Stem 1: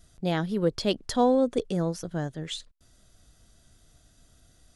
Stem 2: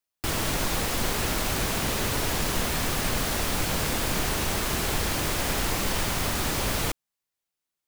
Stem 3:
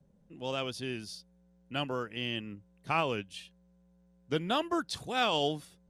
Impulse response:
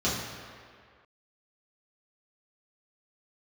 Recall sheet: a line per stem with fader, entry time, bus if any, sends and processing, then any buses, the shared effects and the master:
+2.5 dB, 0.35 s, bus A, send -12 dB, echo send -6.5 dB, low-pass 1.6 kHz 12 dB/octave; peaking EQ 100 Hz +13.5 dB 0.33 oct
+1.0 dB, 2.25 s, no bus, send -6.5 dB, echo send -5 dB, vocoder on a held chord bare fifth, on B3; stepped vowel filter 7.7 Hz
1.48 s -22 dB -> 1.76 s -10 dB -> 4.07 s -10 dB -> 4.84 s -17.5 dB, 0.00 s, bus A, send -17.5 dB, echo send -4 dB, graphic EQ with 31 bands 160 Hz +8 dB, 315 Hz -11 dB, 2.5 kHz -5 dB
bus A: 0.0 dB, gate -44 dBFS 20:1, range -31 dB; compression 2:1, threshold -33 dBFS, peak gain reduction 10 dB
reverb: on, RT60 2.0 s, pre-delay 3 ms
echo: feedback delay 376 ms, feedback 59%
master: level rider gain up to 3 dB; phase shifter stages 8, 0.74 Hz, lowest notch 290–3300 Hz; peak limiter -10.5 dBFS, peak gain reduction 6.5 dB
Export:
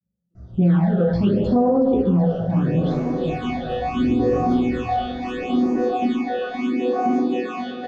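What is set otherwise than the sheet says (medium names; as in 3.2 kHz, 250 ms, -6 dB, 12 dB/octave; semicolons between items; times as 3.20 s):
stem 1 +2.5 dB -> +9.0 dB; reverb return +7.5 dB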